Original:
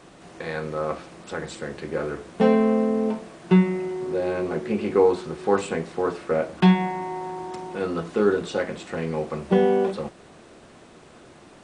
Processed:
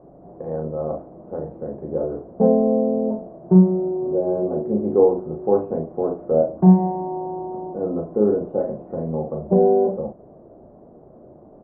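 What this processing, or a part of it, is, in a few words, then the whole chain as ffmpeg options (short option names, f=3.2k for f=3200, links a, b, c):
under water: -filter_complex "[0:a]lowpass=f=750:w=0.5412,lowpass=f=750:w=1.3066,equalizer=f=610:t=o:w=0.35:g=5.5,asplit=2[a][b];[b]adelay=38,volume=-5dB[c];[a][c]amix=inputs=2:normalize=0,volume=1.5dB"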